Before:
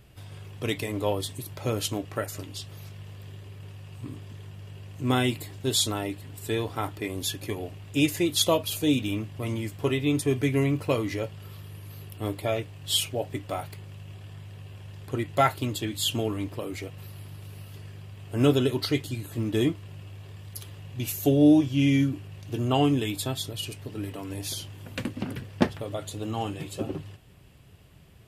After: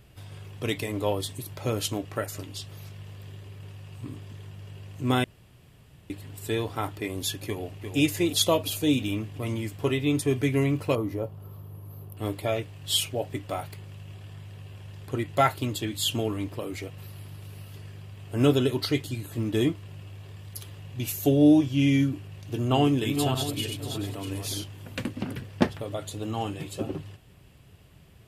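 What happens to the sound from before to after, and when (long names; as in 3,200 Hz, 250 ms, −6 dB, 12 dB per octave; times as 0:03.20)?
0:05.24–0:06.10: fill with room tone
0:07.46–0:07.97: delay throw 350 ms, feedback 60%, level −7 dB
0:10.95–0:12.17: flat-topped bell 3,800 Hz −15.5 dB 2.8 octaves
0:22.39–0:24.64: feedback delay that plays each chunk backwards 319 ms, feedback 41%, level −5 dB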